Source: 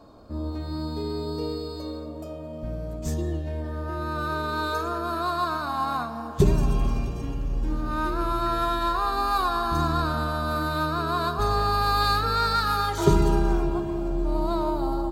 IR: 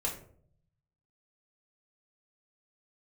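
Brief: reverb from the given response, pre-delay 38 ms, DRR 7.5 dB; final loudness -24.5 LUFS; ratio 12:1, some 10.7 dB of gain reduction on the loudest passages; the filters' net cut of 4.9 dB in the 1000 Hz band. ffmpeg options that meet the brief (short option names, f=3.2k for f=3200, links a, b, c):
-filter_complex "[0:a]equalizer=f=1k:t=o:g=-6.5,acompressor=threshold=-25dB:ratio=12,asplit=2[a][b];[1:a]atrim=start_sample=2205,adelay=38[c];[b][c]afir=irnorm=-1:irlink=0,volume=-11.5dB[d];[a][d]amix=inputs=2:normalize=0,volume=6dB"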